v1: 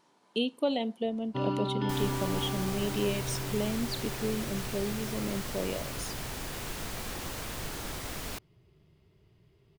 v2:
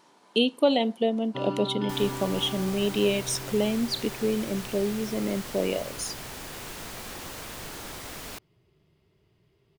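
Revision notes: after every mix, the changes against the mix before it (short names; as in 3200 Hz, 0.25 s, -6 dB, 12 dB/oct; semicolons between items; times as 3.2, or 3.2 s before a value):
speech +8.0 dB; master: add low shelf 150 Hz -7 dB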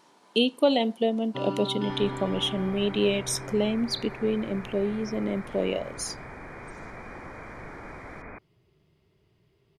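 second sound: add brick-wall FIR low-pass 2500 Hz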